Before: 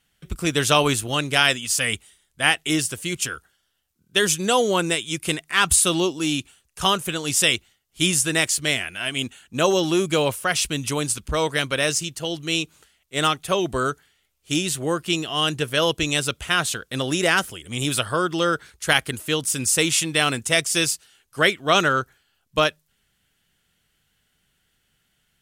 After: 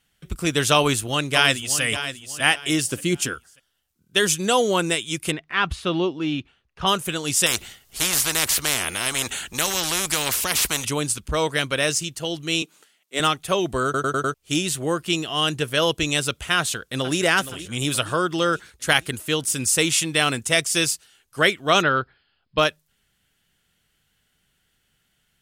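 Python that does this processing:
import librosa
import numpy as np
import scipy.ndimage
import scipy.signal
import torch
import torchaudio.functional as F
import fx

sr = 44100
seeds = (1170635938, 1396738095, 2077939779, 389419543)

y = fx.echo_throw(x, sr, start_s=0.75, length_s=1.07, ms=590, feedback_pct=30, wet_db=-11.0)
y = fx.peak_eq(y, sr, hz=270.0, db=9.0, octaves=1.8, at=(2.92, 3.34))
y = fx.air_absorb(y, sr, metres=290.0, at=(5.3, 6.86), fade=0.02)
y = fx.spectral_comp(y, sr, ratio=4.0, at=(7.46, 10.85))
y = fx.highpass(y, sr, hz=200.0, slope=24, at=(12.62, 13.2))
y = fx.echo_throw(y, sr, start_s=16.57, length_s=0.61, ms=470, feedback_pct=55, wet_db=-13.5)
y = fx.brickwall_lowpass(y, sr, high_hz=5200.0, at=(21.81, 22.58), fade=0.02)
y = fx.edit(y, sr, fx.stutter_over(start_s=13.84, slice_s=0.1, count=5), tone=tone)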